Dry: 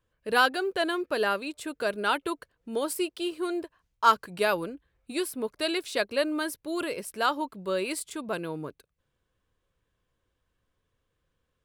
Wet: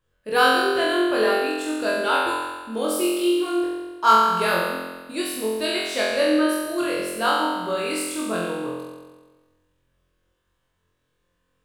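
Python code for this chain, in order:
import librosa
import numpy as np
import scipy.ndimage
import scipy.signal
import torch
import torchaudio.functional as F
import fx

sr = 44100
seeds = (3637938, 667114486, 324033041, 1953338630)

y = fx.envelope_sharpen(x, sr, power=1.5, at=(6.34, 6.78))
y = fx.room_flutter(y, sr, wall_m=3.9, rt60_s=1.3)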